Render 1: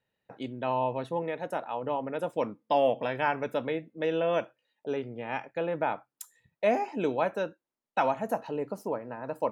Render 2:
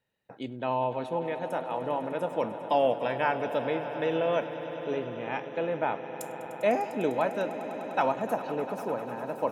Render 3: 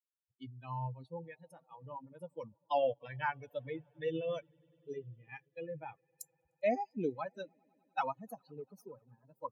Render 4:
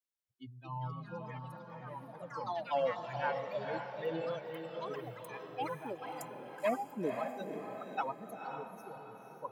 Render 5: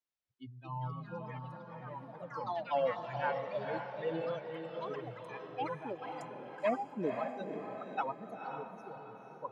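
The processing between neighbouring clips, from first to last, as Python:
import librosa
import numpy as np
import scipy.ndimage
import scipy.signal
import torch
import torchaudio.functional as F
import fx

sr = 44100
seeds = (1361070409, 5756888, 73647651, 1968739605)

y1 = fx.echo_swell(x, sr, ms=100, loudest=5, wet_db=-16.0)
y2 = fx.bin_expand(y1, sr, power=3.0)
y2 = fx.peak_eq(y2, sr, hz=130.0, db=7.5, octaves=0.58)
y2 = y2 * librosa.db_to_amplitude(-2.5)
y3 = fx.wow_flutter(y2, sr, seeds[0], rate_hz=2.1, depth_cents=16.0)
y3 = fx.echo_pitch(y3, sr, ms=316, semitones=4, count=3, db_per_echo=-6.0)
y3 = fx.echo_diffused(y3, sr, ms=505, feedback_pct=48, wet_db=-5.5)
y3 = y3 * librosa.db_to_amplitude(-1.5)
y4 = fx.air_absorb(y3, sr, metres=110.0)
y4 = y4 * librosa.db_to_amplitude(1.0)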